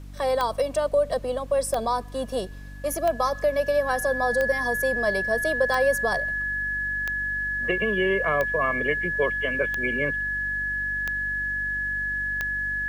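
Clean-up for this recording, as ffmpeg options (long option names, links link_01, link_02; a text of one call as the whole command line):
ffmpeg -i in.wav -af "adeclick=threshold=4,bandreject=frequency=48.6:width_type=h:width=4,bandreject=frequency=97.2:width_type=h:width=4,bandreject=frequency=145.8:width_type=h:width=4,bandreject=frequency=194.4:width_type=h:width=4,bandreject=frequency=243:width_type=h:width=4,bandreject=frequency=291.6:width_type=h:width=4,bandreject=frequency=1700:width=30,agate=range=-21dB:threshold=-26dB" out.wav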